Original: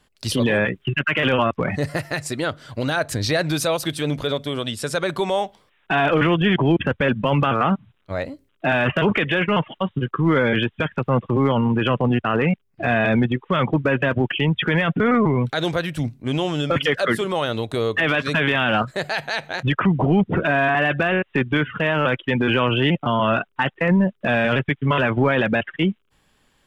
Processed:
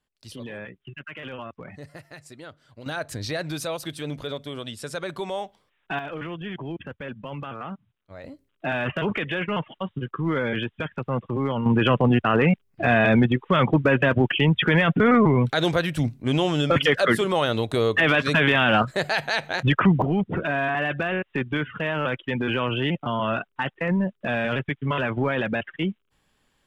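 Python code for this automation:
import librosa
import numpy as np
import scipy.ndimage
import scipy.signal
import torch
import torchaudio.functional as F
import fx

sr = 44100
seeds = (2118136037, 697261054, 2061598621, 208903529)

y = fx.gain(x, sr, db=fx.steps((0.0, -18.0), (2.86, -8.5), (5.99, -16.0), (8.24, -7.0), (11.66, 0.5), (20.02, -6.0)))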